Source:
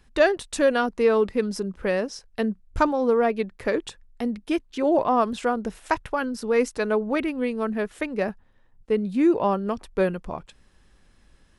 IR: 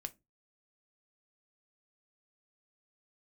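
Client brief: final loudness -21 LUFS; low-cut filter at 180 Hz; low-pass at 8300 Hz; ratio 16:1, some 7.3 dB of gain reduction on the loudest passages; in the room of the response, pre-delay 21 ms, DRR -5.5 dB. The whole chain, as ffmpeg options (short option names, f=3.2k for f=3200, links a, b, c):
-filter_complex "[0:a]highpass=180,lowpass=8.3k,acompressor=threshold=-21dB:ratio=16,asplit=2[a][b];[1:a]atrim=start_sample=2205,adelay=21[c];[b][c]afir=irnorm=-1:irlink=0,volume=8.5dB[d];[a][d]amix=inputs=2:normalize=0,volume=1dB"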